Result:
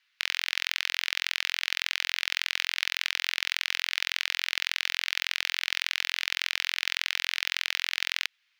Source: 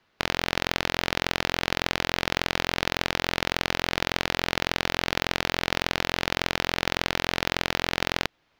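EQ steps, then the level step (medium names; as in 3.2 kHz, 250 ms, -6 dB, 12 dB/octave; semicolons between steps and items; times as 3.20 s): ladder high-pass 1.6 kHz, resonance 25%; +5.0 dB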